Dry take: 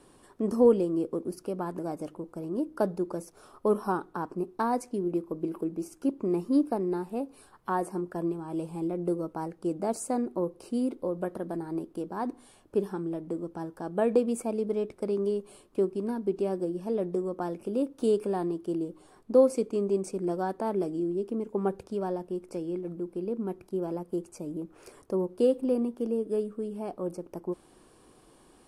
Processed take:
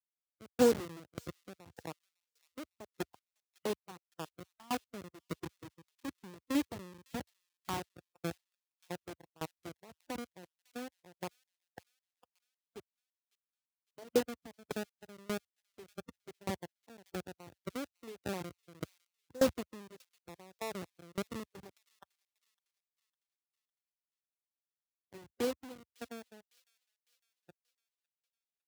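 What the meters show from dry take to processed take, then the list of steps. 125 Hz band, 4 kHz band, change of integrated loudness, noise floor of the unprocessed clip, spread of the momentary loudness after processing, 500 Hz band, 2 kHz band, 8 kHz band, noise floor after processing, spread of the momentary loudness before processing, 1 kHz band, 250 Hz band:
-11.0 dB, n/a, -9.0 dB, -59 dBFS, 22 LU, -12.0 dB, -1.0 dB, -3.0 dB, under -85 dBFS, 10 LU, -11.0 dB, -12.5 dB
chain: level-crossing sampler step -22 dBFS; spectral noise reduction 11 dB; HPF 75 Hz 24 dB/oct; on a send: thin delay 0.555 s, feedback 41%, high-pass 3000 Hz, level -20.5 dB; on the sum: dB-ramp tremolo decaying 1.7 Hz, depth 27 dB; gain -2 dB

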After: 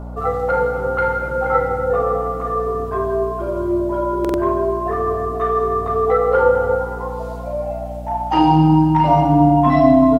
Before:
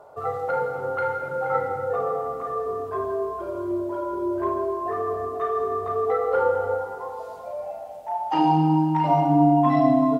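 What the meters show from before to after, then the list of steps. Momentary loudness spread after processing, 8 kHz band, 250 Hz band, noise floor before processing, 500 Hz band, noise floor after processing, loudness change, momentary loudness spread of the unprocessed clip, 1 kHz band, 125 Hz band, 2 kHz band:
12 LU, n/a, +6.0 dB, -37 dBFS, +7.0 dB, -27 dBFS, +6.5 dB, 13 LU, +6.0 dB, +8.5 dB, +8.0 dB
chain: hum 60 Hz, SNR 13 dB; doubler 12 ms -10.5 dB; stuck buffer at 4.2, samples 2048, times 2; gain +6.5 dB

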